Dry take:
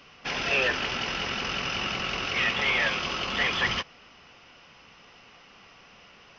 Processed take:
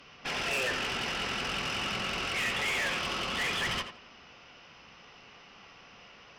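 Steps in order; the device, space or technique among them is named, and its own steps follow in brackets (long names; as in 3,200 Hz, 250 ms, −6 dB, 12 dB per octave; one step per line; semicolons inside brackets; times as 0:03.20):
rockabilly slapback (tube saturation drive 28 dB, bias 0.35; tape delay 84 ms, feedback 31%, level −7 dB, low-pass 3,100 Hz)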